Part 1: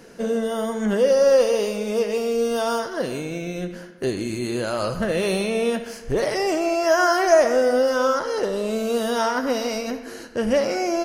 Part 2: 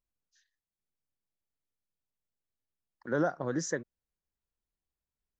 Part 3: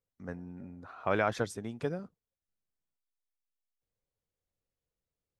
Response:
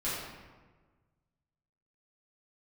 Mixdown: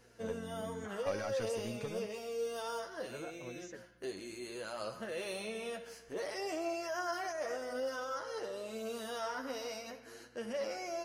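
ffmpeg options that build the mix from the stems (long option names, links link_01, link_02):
-filter_complex "[0:a]highpass=frequency=500:poles=1,alimiter=limit=-16.5dB:level=0:latency=1:release=13,aeval=exprs='val(0)+0.00224*(sin(2*PI*60*n/s)+sin(2*PI*2*60*n/s)/2+sin(2*PI*3*60*n/s)/3+sin(2*PI*4*60*n/s)/4+sin(2*PI*5*60*n/s)/5)':channel_layout=same,volume=-10.5dB[link_01];[1:a]volume=-13.5dB[link_02];[2:a]acompressor=threshold=-31dB:ratio=6,asoftclip=type=tanh:threshold=-33.5dB,volume=2dB[link_03];[link_01][link_02][link_03]amix=inputs=3:normalize=0,flanger=delay=8:depth=3.4:regen=23:speed=0.58:shape=triangular"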